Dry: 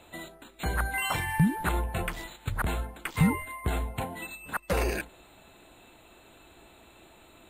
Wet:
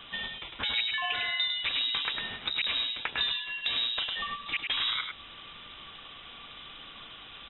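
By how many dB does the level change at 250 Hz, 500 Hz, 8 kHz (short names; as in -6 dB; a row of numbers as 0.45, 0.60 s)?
-21.0 dB, -13.0 dB, under -40 dB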